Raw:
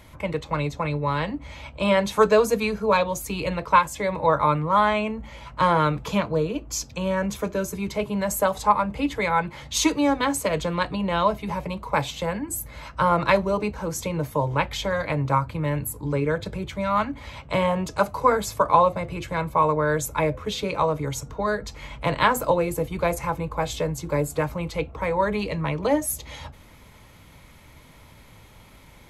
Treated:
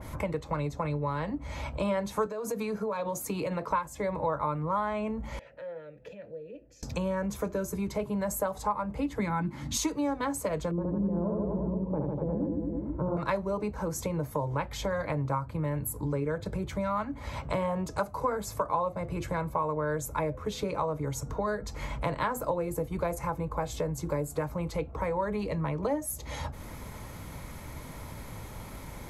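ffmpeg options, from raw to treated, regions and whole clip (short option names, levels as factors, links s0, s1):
-filter_complex "[0:a]asettb=1/sr,asplit=3[s0][s1][s2];[s0]atrim=end=2.264[s3];[s1]atrim=start=2.26:end=3.71,asetpts=PTS-STARTPTS,afade=t=in:d=0.004:c=qsin,afade=t=out:st=1.446:d=0.004:c=qsin,highpass=160,acompressor=threshold=0.0631:ratio=16:attack=3.2:release=140:knee=1:detection=peak[s4];[s2]atrim=start=3.706[s5];[s3][s4]acrossfade=d=0.004:c1=hsin:c2=qsin[s6];[s6][s5]acrossfade=d=0.004:c1=qsin:c2=hsin,asettb=1/sr,asplit=3[s7][s8][s9];[s7]atrim=end=5.394[s10];[s8]atrim=start=5.39:end=6.83,asetpts=PTS-STARTPTS,afade=t=in:d=0.004:c=qsin,afade=t=out:st=1.436:d=0.004:c=qsin,asubboost=boost=9.5:cutoff=250,acompressor=threshold=0.0251:ratio=12:attack=3.2:release=140:knee=1:detection=peak,asplit=3[s11][s12][s13];[s11]bandpass=f=530:t=q:w=8,volume=1[s14];[s12]bandpass=f=1840:t=q:w=8,volume=0.501[s15];[s13]bandpass=f=2480:t=q:w=8,volume=0.355[s16];[s14][s15][s16]amix=inputs=3:normalize=0[s17];[s9]atrim=start=6.826[s18];[s10][s17]acrossfade=d=0.004:c1=hsin:c2=qsin[s19];[s19][s18]acrossfade=d=0.004:c1=qsin:c2=hsin,asettb=1/sr,asplit=3[s20][s21][s22];[s20]atrim=end=9.194[s23];[s21]atrim=start=9.19:end=9.77,asetpts=PTS-STARTPTS,afade=t=in:d=0.004:c=qsin,afade=t=out:st=0.576:d=0.004:c=qsin,highpass=f=150:p=1,lowshelf=f=370:t=q:w=3:g=8.5[s24];[s22]atrim=start=9.766[s25];[s23][s24]acrossfade=d=0.004:c1=hsin:c2=qsin[s26];[s26][s25]acrossfade=d=0.004:c1=qsin:c2=hsin,asettb=1/sr,asplit=3[s27][s28][s29];[s27]atrim=end=10.714[s30];[s28]atrim=start=10.71:end=13.17,asetpts=PTS-STARTPTS,afade=t=in:d=0.004:c=qsin,afade=t=out:st=2.456:d=0.004:c=qsin,lowpass=f=360:t=q:w=1.9,aecho=1:1:70|150.5|243.1|349.5|472:0.794|0.631|0.501|0.398|0.316,atrim=end_sample=108486[s31];[s29]atrim=start=13.166[s32];[s30][s31]acrossfade=d=0.004:c1=hsin:c2=qsin[s33];[s33][s32]acrossfade=d=0.004:c1=qsin:c2=hsin,equalizer=f=3000:w=1.1:g=-8.5,acompressor=threshold=0.00891:ratio=3,adynamicequalizer=threshold=0.00224:dfrequency=2200:dqfactor=0.7:tfrequency=2200:tqfactor=0.7:attack=5:release=100:ratio=0.375:range=1.5:mode=cutabove:tftype=highshelf,volume=2.51"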